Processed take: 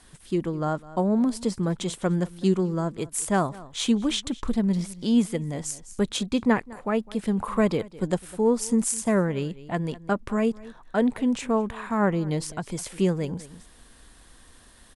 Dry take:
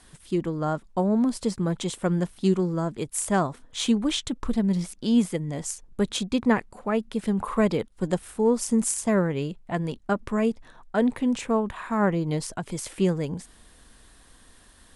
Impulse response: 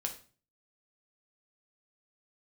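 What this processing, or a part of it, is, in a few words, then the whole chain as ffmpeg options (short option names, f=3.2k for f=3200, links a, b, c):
ducked delay: -filter_complex "[0:a]asplit=3[a][b][c];[b]adelay=205,volume=-4dB[d];[c]apad=whole_len=668379[e];[d][e]sidechaincompress=threshold=-49dB:ratio=3:attack=16:release=311[f];[a][f]amix=inputs=2:normalize=0"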